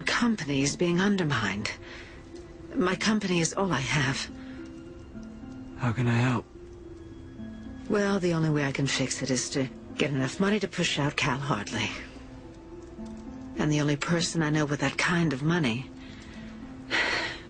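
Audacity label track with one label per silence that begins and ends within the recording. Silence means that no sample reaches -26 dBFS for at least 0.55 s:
1.710000	2.770000	silence
4.240000	5.830000	silence
6.390000	7.900000	silence
11.890000	13.590000	silence
15.800000	16.920000	silence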